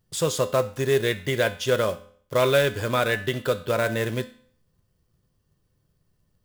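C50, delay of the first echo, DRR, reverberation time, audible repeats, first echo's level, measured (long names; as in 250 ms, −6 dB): 15.0 dB, no echo audible, 9.5 dB, 0.60 s, no echo audible, no echo audible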